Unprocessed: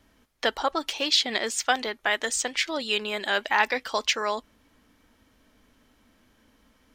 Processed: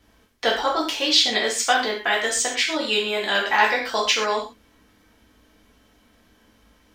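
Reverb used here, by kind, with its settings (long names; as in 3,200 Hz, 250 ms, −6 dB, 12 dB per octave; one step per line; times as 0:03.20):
reverb whose tail is shaped and stops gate 160 ms falling, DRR −3 dB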